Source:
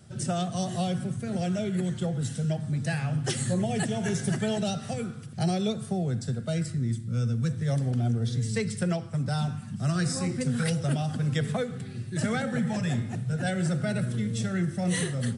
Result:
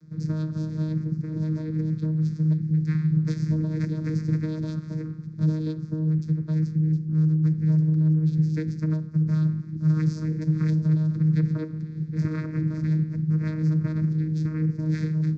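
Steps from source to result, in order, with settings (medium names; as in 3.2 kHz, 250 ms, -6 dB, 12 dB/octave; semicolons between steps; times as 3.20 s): spectral selection erased 2.52–3.14 s, 430–1400 Hz; vocoder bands 8, saw 156 Hz; static phaser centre 2.9 kHz, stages 6; trim +5.5 dB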